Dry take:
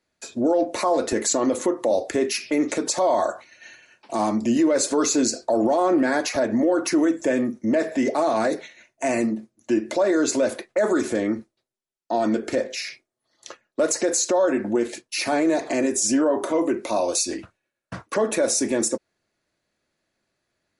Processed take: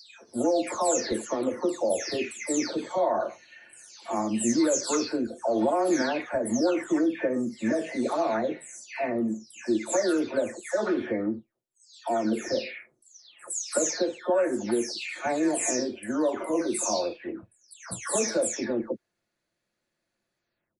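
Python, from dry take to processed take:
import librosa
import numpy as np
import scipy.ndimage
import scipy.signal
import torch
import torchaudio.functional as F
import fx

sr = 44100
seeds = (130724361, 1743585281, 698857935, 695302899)

y = fx.spec_delay(x, sr, highs='early', ms=409)
y = y * librosa.db_to_amplitude(-4.0)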